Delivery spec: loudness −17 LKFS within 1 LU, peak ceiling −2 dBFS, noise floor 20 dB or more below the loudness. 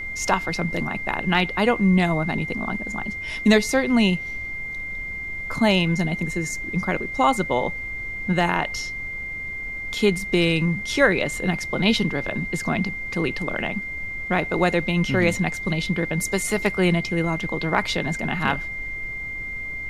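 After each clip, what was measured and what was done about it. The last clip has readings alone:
interfering tone 2,100 Hz; level of the tone −29 dBFS; background noise floor −32 dBFS; target noise floor −43 dBFS; integrated loudness −23.0 LKFS; sample peak −3.5 dBFS; target loudness −17.0 LKFS
→ notch filter 2,100 Hz, Q 30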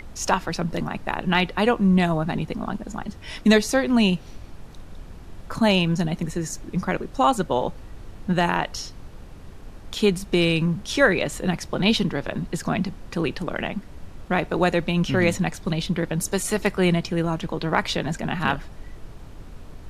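interfering tone none found; background noise floor −42 dBFS; target noise floor −44 dBFS
→ noise reduction from a noise print 6 dB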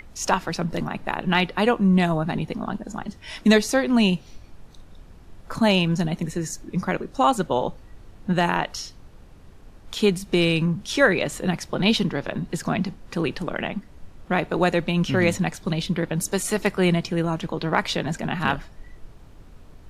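background noise floor −47 dBFS; integrated loudness −23.5 LKFS; sample peak −4.5 dBFS; target loudness −17.0 LKFS
→ level +6.5 dB
brickwall limiter −2 dBFS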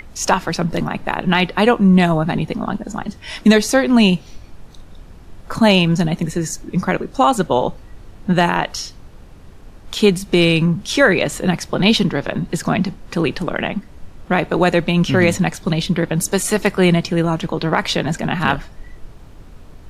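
integrated loudness −17.5 LKFS; sample peak −2.0 dBFS; background noise floor −41 dBFS

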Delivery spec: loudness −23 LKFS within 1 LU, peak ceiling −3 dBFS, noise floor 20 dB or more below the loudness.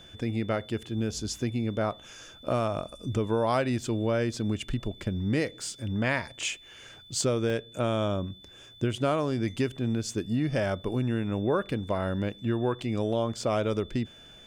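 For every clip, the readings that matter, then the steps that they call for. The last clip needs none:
number of dropouts 1; longest dropout 1.7 ms; interfering tone 3,500 Hz; level of the tone −50 dBFS; integrated loudness −29.5 LKFS; sample peak −14.0 dBFS; target loudness −23.0 LKFS
→ repair the gap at 0:07.50, 1.7 ms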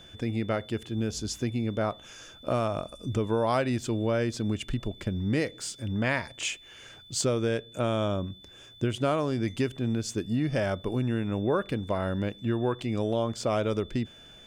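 number of dropouts 0; interfering tone 3,500 Hz; level of the tone −50 dBFS
→ notch filter 3,500 Hz, Q 30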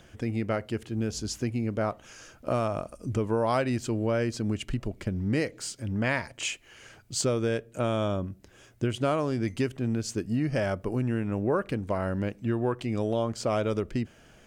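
interfering tone none found; integrated loudness −29.5 LKFS; sample peak −14.0 dBFS; target loudness −23.0 LKFS
→ level +6.5 dB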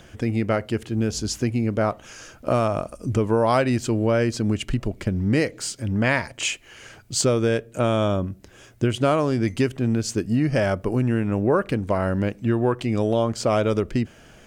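integrated loudness −23.0 LKFS; sample peak −7.5 dBFS; background noise floor −49 dBFS

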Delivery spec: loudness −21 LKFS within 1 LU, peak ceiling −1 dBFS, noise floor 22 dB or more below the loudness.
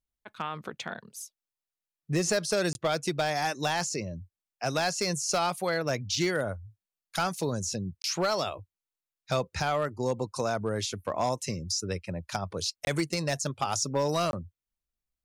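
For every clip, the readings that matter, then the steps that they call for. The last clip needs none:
share of clipped samples 0.5%; peaks flattened at −19.5 dBFS; number of dropouts 4; longest dropout 21 ms; integrated loudness −30.0 LKFS; sample peak −19.5 dBFS; target loudness −21.0 LKFS
→ clipped peaks rebuilt −19.5 dBFS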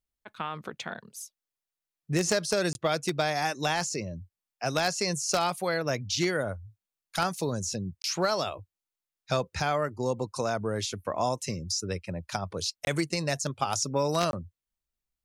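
share of clipped samples 0.0%; number of dropouts 4; longest dropout 21 ms
→ repair the gap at 0:02.73/0:08.02/0:12.85/0:14.31, 21 ms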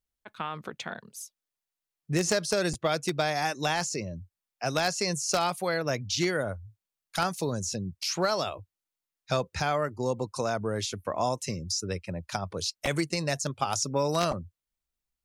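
number of dropouts 0; integrated loudness −30.0 LKFS; sample peak −10.5 dBFS; target loudness −21.0 LKFS
→ level +9 dB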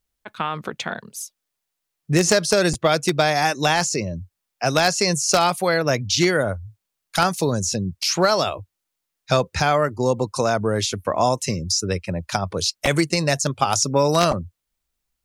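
integrated loudness −21.0 LKFS; sample peak −1.5 dBFS; background noise floor −81 dBFS

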